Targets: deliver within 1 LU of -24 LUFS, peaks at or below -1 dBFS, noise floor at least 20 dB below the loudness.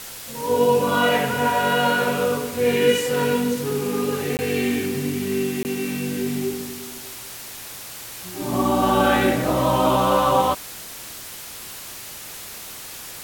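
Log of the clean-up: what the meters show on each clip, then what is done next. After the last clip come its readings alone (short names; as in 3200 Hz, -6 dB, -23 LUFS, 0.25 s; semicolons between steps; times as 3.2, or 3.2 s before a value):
dropouts 2; longest dropout 19 ms; noise floor -37 dBFS; noise floor target -41 dBFS; loudness -21.0 LUFS; peak -5.5 dBFS; loudness target -24.0 LUFS
-> interpolate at 4.37/5.63, 19 ms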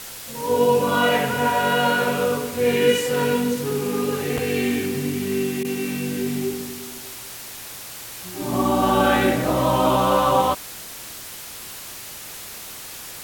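dropouts 0; noise floor -37 dBFS; noise floor target -41 dBFS
-> denoiser 6 dB, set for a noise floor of -37 dBFS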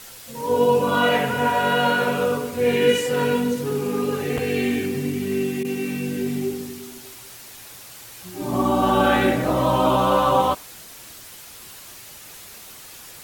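noise floor -42 dBFS; loudness -21.0 LUFS; peak -6.0 dBFS; loudness target -24.0 LUFS
-> gain -3 dB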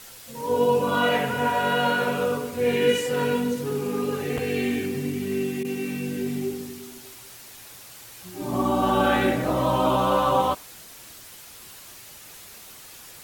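loudness -24.0 LUFS; peak -9.0 dBFS; noise floor -45 dBFS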